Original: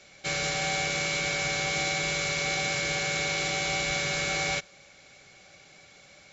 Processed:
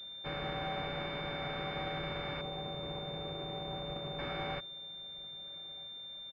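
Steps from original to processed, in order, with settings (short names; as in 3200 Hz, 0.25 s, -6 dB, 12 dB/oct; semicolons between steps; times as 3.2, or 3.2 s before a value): 2.41–4.19 median filter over 25 samples; outdoor echo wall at 220 m, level -21 dB; pulse-width modulation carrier 3600 Hz; gain -6 dB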